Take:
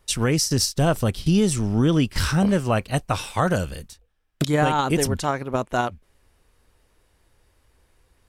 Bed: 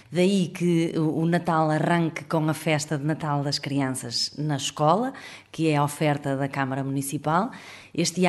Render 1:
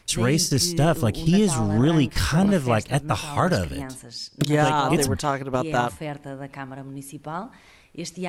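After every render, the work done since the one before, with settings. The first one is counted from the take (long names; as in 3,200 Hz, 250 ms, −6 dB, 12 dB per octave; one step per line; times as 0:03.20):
mix in bed −9 dB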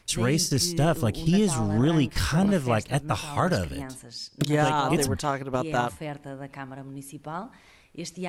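level −3 dB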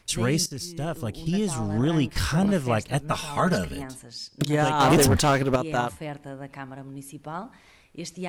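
0:00.46–0:02.15: fade in, from −12.5 dB
0:03.01–0:03.84: comb filter 4.7 ms
0:04.80–0:05.56: leveller curve on the samples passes 3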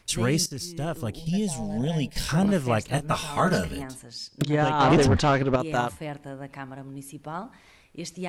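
0:01.19–0:02.29: phaser with its sweep stopped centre 330 Hz, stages 6
0:02.82–0:03.78: double-tracking delay 25 ms −8 dB
0:04.42–0:05.60: high-frequency loss of the air 110 metres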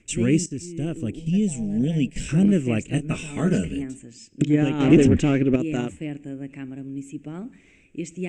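drawn EQ curve 110 Hz 0 dB, 310 Hz +9 dB, 990 Hz −18 dB, 2,600 Hz +4 dB, 4,400 Hz −18 dB, 7,800 Hz +5 dB, 11,000 Hz −26 dB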